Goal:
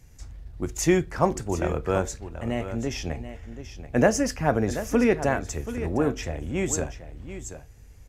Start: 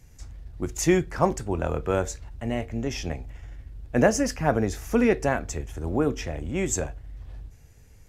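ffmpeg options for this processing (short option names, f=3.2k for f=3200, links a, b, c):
-af "aecho=1:1:733:0.251"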